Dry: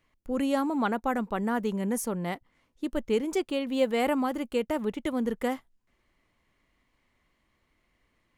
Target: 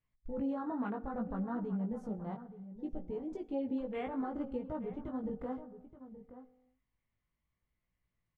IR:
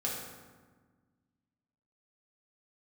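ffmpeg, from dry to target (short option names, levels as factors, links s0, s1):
-filter_complex "[0:a]lowpass=4100,lowshelf=f=210:t=q:w=1.5:g=8,afwtdn=0.0224,acompressor=threshold=0.0282:ratio=6,alimiter=level_in=1.68:limit=0.0631:level=0:latency=1:release=138,volume=0.596,flanger=delay=16:depth=3.8:speed=0.64,asplit=2[s0][s1];[s1]adelay=874.6,volume=0.224,highshelf=f=4000:g=-19.7[s2];[s0][s2]amix=inputs=2:normalize=0,asplit=2[s3][s4];[1:a]atrim=start_sample=2205,afade=t=out:st=0.4:d=0.01,atrim=end_sample=18081[s5];[s4][s5]afir=irnorm=-1:irlink=0,volume=0.119[s6];[s3][s6]amix=inputs=2:normalize=0"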